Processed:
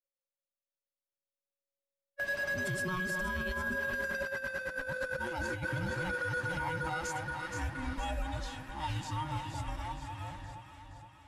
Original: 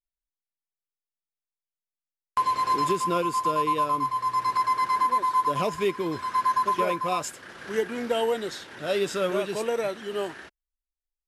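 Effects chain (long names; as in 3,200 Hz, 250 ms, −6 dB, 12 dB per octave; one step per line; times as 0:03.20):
frequency inversion band by band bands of 500 Hz
source passing by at 0:04.56, 26 m/s, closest 25 metres
delay that swaps between a low-pass and a high-pass 235 ms, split 980 Hz, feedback 75%, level −6 dB
compressor whose output falls as the input rises −30 dBFS, ratio −0.5
brickwall limiter −26.5 dBFS, peak gain reduction 8 dB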